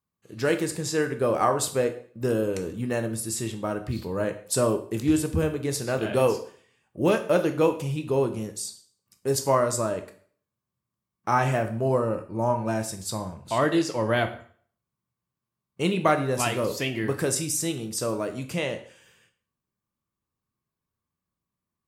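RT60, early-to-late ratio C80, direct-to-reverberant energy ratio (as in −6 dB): 0.50 s, 15.5 dB, 7.0 dB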